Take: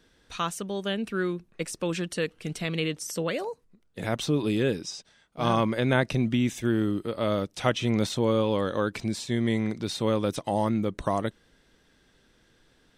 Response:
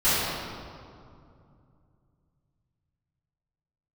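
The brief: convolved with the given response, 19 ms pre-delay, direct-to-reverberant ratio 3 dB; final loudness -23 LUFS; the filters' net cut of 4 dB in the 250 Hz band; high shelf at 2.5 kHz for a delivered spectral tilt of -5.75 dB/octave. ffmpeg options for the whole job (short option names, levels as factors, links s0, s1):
-filter_complex "[0:a]equalizer=f=250:t=o:g=-5,highshelf=f=2500:g=-6.5,asplit=2[s0][s1];[1:a]atrim=start_sample=2205,adelay=19[s2];[s1][s2]afir=irnorm=-1:irlink=0,volume=0.0944[s3];[s0][s3]amix=inputs=2:normalize=0,volume=1.88"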